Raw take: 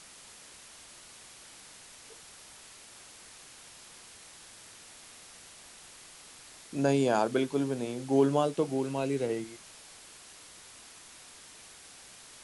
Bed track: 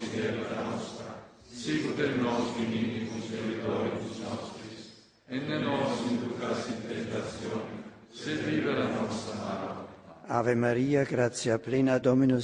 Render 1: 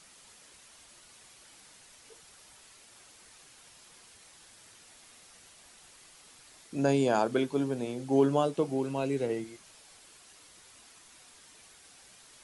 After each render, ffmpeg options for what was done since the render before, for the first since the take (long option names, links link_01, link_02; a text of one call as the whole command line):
ffmpeg -i in.wav -af "afftdn=noise_reduction=6:noise_floor=-52" out.wav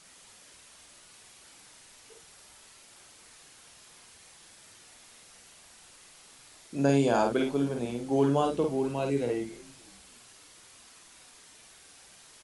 ffmpeg -i in.wav -filter_complex "[0:a]asplit=2[link_01][link_02];[link_02]adelay=50,volume=-4dB[link_03];[link_01][link_03]amix=inputs=2:normalize=0,asplit=4[link_04][link_05][link_06][link_07];[link_05]adelay=285,afreqshift=-73,volume=-24dB[link_08];[link_06]adelay=570,afreqshift=-146,volume=-30.9dB[link_09];[link_07]adelay=855,afreqshift=-219,volume=-37.9dB[link_10];[link_04][link_08][link_09][link_10]amix=inputs=4:normalize=0" out.wav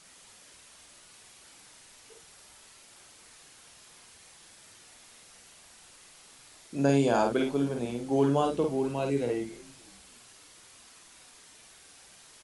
ffmpeg -i in.wav -af anull out.wav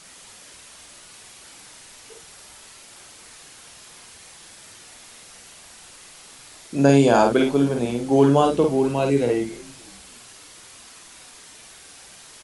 ffmpeg -i in.wav -af "volume=9dB" out.wav